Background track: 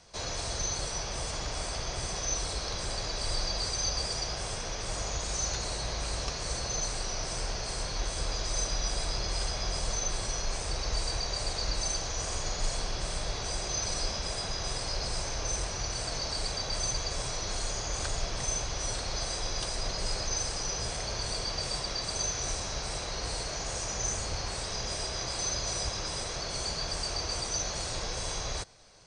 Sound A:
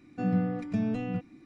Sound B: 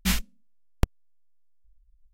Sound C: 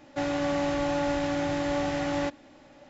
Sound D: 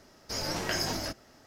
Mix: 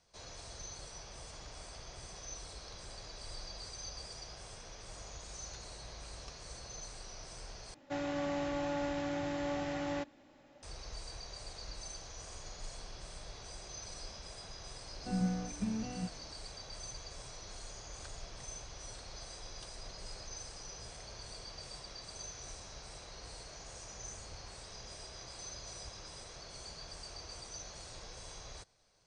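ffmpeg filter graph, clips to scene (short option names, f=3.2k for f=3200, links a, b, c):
-filter_complex "[0:a]volume=-14.5dB[a];[1:a]aecho=1:1:5.4:0.57[b];[a]asplit=2[c][d];[c]atrim=end=7.744[e];[3:a]atrim=end=2.89,asetpts=PTS-STARTPTS,volume=-8.5dB[f];[d]atrim=start=10.626[g];[b]atrim=end=1.45,asetpts=PTS-STARTPTS,volume=-9.5dB,afade=t=in:d=0.004:c=hsin,afade=t=out:st=1.446:d=0.004:c=hsin,adelay=14880[h];[e][f]acrossfade=d=0.004:c1=hsin:c2=hsin[i];[i][g]acrossfade=d=0.004:c1=hsin:c2=hsin[j];[j][h]amix=inputs=2:normalize=0"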